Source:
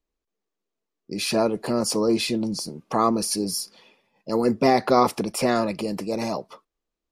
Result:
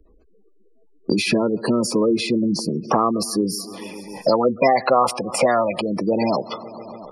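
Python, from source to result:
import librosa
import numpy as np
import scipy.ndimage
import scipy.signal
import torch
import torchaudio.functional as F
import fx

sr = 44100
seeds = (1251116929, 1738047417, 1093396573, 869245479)

p1 = x + fx.echo_feedback(x, sr, ms=139, feedback_pct=59, wet_db=-21.0, dry=0)
p2 = fx.spec_gate(p1, sr, threshold_db=-20, keep='strong')
p3 = fx.peak_eq(p2, sr, hz=720.0, db=-11.0, octaves=0.65, at=(1.14, 2.02))
p4 = fx.spec_box(p3, sr, start_s=4.26, length_s=1.55, low_hz=480.0, high_hz=10000.0, gain_db=10)
y = fx.band_squash(p4, sr, depth_pct=100)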